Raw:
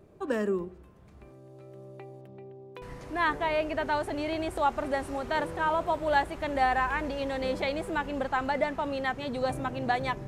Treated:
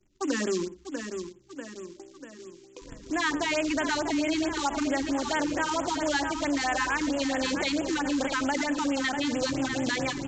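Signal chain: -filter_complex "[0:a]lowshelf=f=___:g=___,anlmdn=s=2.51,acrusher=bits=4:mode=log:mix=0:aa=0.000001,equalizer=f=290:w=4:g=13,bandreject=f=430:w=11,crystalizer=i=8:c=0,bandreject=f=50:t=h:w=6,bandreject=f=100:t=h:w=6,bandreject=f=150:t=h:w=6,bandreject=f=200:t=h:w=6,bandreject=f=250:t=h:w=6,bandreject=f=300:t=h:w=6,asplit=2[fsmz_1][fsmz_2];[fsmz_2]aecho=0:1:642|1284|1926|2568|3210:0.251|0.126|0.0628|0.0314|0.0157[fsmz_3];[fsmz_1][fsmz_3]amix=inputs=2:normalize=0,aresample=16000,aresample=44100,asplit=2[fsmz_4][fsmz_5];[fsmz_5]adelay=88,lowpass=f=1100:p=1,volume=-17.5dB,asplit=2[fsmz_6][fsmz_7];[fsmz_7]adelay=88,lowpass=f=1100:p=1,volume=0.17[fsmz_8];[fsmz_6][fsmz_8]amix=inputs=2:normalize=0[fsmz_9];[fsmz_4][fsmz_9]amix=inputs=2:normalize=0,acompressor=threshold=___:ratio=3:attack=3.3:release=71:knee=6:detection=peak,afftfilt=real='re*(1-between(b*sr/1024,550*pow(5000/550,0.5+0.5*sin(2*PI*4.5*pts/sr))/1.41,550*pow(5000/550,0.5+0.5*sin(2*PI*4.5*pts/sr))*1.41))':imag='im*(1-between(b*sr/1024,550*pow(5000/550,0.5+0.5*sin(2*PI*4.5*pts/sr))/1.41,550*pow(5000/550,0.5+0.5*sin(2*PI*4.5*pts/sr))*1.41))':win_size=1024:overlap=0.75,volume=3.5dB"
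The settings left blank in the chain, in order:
77, -3, -29dB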